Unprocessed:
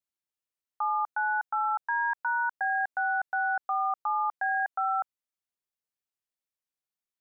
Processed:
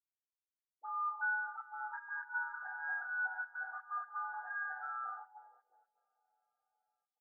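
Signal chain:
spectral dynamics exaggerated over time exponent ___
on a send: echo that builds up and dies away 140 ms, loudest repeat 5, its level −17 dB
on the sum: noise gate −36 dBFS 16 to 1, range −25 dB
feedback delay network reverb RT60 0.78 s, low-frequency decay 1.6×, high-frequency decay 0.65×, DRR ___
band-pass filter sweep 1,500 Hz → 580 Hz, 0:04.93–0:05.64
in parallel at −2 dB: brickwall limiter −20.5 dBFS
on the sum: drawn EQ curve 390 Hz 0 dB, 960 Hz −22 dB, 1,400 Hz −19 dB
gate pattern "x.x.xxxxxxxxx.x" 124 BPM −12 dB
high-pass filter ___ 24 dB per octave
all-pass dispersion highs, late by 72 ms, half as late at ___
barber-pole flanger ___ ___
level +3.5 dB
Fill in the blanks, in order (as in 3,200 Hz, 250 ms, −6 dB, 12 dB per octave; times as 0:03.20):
1.5, −9 dB, 460 Hz, 1,200 Hz, 9.3 ms, −2 Hz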